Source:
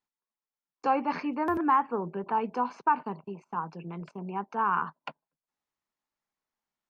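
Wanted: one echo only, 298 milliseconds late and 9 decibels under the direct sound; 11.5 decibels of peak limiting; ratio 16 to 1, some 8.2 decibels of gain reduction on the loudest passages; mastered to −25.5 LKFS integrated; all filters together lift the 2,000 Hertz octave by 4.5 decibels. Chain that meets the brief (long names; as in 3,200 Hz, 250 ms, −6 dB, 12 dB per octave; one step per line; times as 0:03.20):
parametric band 2,000 Hz +6.5 dB
downward compressor 16 to 1, threshold −25 dBFS
brickwall limiter −26.5 dBFS
single-tap delay 298 ms −9 dB
level +11 dB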